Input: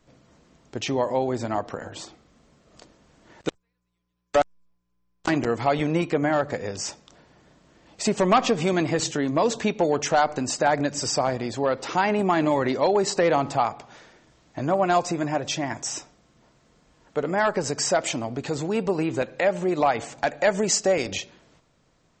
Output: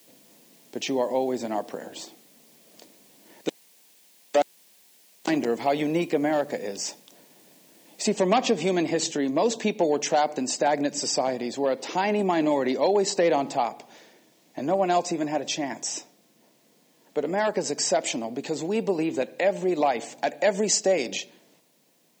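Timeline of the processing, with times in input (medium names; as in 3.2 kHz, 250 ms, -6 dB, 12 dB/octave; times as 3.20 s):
8.06 s: noise floor step -57 dB -67 dB
whole clip: high-pass 190 Hz 24 dB/octave; peaking EQ 1.3 kHz -11 dB 0.64 oct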